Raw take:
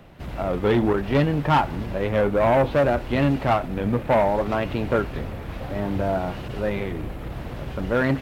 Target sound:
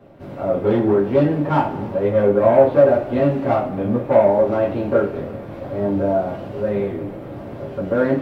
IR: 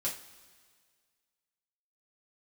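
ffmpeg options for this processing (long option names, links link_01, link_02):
-filter_complex "[0:a]equalizer=frequency=390:width=0.36:gain=14.5[link_01];[1:a]atrim=start_sample=2205[link_02];[link_01][link_02]afir=irnorm=-1:irlink=0,volume=-11.5dB"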